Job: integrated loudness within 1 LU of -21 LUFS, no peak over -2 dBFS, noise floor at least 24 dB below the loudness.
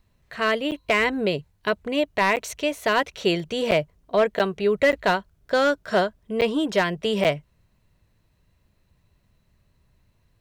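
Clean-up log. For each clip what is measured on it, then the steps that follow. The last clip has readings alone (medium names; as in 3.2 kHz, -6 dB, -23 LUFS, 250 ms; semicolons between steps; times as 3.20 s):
clipped samples 0.4%; clipping level -12.0 dBFS; dropouts 7; longest dropout 8.4 ms; loudness -23.5 LUFS; peak level -12.0 dBFS; loudness target -21.0 LUFS
-> clip repair -12 dBFS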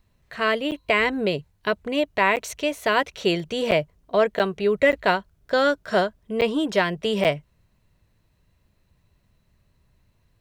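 clipped samples 0.0%; dropouts 7; longest dropout 8.4 ms
-> interpolate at 0.71/2.36/3.71/4.39/4.92/6.41/7.24 s, 8.4 ms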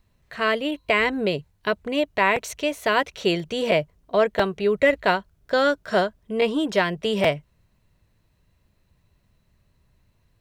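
dropouts 0; loudness -23.0 LUFS; peak level -5.0 dBFS; loudness target -21.0 LUFS
-> trim +2 dB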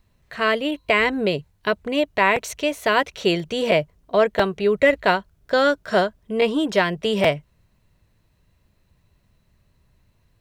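loudness -21.0 LUFS; peak level -3.0 dBFS; noise floor -64 dBFS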